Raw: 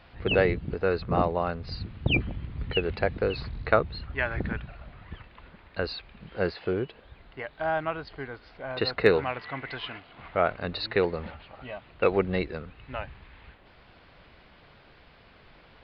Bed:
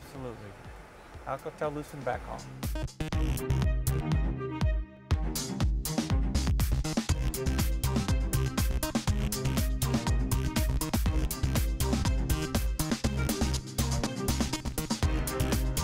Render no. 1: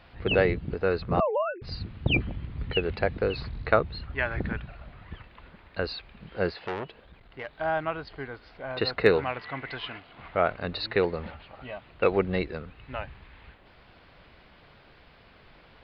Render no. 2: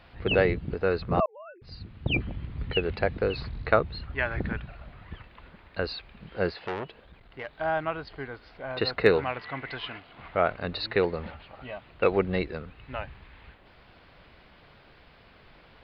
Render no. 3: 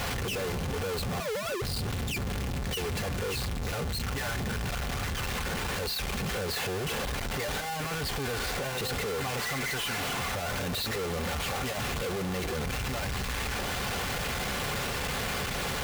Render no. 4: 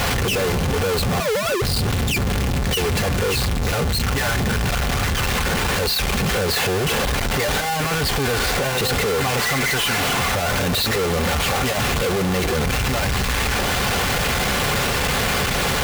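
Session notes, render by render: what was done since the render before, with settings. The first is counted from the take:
0:01.20–0:01.62: three sine waves on the formant tracks; 0:06.59–0:07.53: saturating transformer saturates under 1,500 Hz
0:01.26–0:02.42: fade in
sign of each sample alone; notch comb filter 320 Hz
level +11.5 dB

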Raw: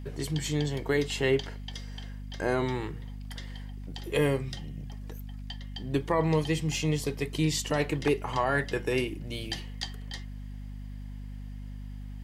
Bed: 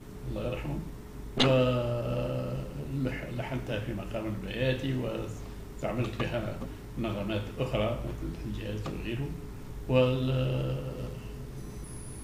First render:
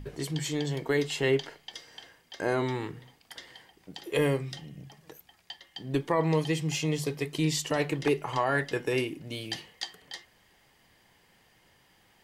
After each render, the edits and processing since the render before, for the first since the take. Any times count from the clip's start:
hum removal 50 Hz, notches 5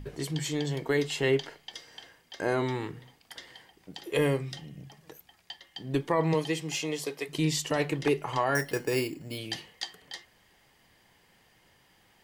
0:06.33–0:07.28: high-pass filter 180 Hz → 420 Hz
0:08.55–0:09.38: bad sample-rate conversion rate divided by 6×, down filtered, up hold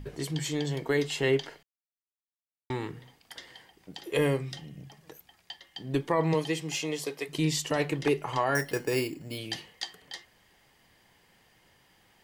0:01.63–0:02.70: silence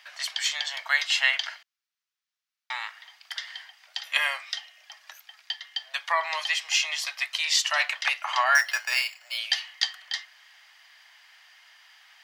Butterworth high-pass 630 Hz 72 dB per octave
flat-topped bell 2,700 Hz +11 dB 2.7 octaves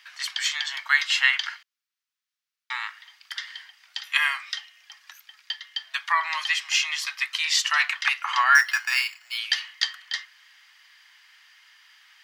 high-pass filter 990 Hz 24 dB per octave
dynamic equaliser 1,300 Hz, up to +5 dB, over −40 dBFS, Q 0.92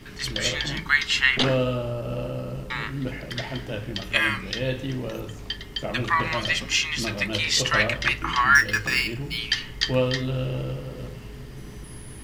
mix in bed +1.5 dB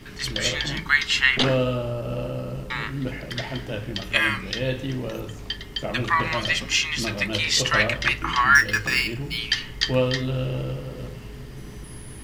level +1 dB

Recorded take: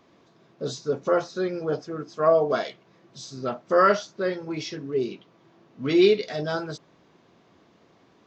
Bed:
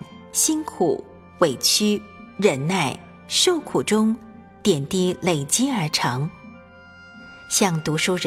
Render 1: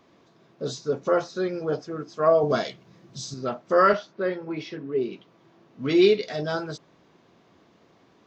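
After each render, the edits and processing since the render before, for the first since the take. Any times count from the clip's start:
0:02.43–0:03.34: bass and treble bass +10 dB, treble +6 dB
0:03.93–0:05.13: band-pass filter 140–3,000 Hz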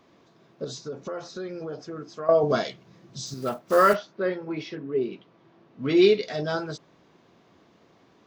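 0:00.64–0:02.29: downward compressor 4 to 1, threshold −32 dBFS
0:03.26–0:03.96: one scale factor per block 5 bits
0:04.75–0:05.97: high-frequency loss of the air 98 metres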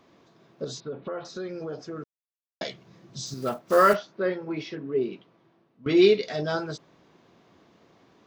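0:00.80–0:01.25: Butterworth low-pass 3,800 Hz 48 dB per octave
0:02.04–0:02.61: silence
0:05.09–0:05.86: fade out, to −18 dB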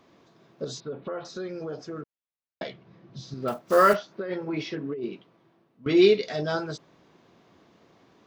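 0:02.01–0:03.48: high-frequency loss of the air 230 metres
0:04.11–0:05.05: compressor whose output falls as the input rises −30 dBFS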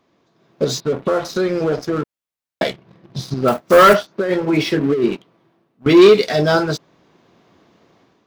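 leveller curve on the samples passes 2
automatic gain control gain up to 8.5 dB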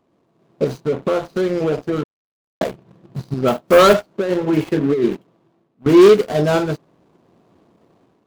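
running median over 25 samples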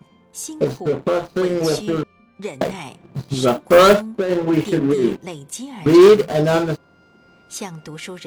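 mix in bed −11.5 dB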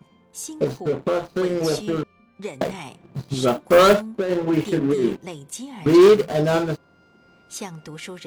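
level −3 dB

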